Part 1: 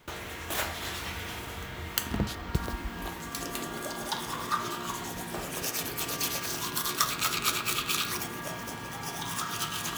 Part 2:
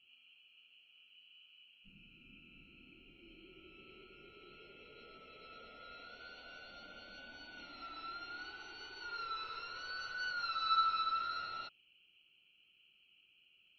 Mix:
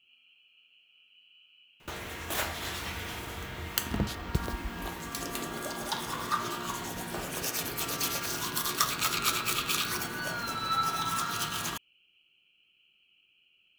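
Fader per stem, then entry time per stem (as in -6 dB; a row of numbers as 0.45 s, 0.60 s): -0.5 dB, +2.0 dB; 1.80 s, 0.00 s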